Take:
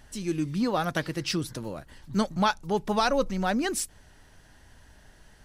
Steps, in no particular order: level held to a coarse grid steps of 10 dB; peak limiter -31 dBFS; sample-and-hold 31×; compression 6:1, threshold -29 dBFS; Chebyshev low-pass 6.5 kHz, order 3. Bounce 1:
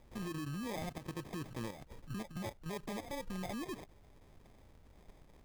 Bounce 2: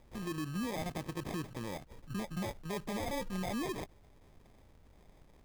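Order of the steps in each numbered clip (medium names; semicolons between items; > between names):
compression > peak limiter > Chebyshev low-pass > level held to a coarse grid > sample-and-hold; Chebyshev low-pass > sample-and-hold > level held to a coarse grid > peak limiter > compression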